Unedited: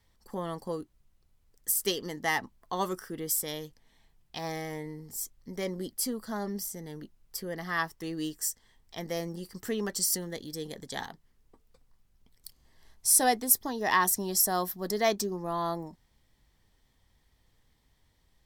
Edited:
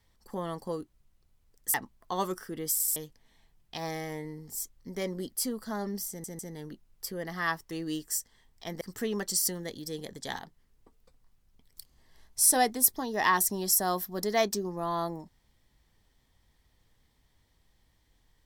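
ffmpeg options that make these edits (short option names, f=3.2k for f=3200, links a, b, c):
-filter_complex "[0:a]asplit=8[a][b][c][d][e][f][g][h];[a]atrim=end=1.742[i];[b]atrim=start=2.348:end=3.412[j];[c]atrim=start=3.328:end=3.412[k];[d]atrim=start=3.328:end=3.412[l];[e]atrim=start=3.568:end=6.852[m];[f]atrim=start=6.698:end=6.852[n];[g]atrim=start=6.698:end=9.122[o];[h]atrim=start=9.478[p];[i][j]acrossfade=d=0.004:c1=hsin:c2=hsin[q];[q][k]acrossfade=d=0.004:c1=hsin:c2=hsin[r];[r][l]acrossfade=d=0.004:c1=hsin:c2=hsin[s];[s][m]acrossfade=d=0.004:c1=hsin:c2=hsin[t];[t][n]acrossfade=d=0.004:c1=hsin:c2=hsin[u];[u][o]acrossfade=d=0.004:c1=hsin:c2=hsin[v];[v][p]acrossfade=d=0.004:c1=hsin:c2=hsin"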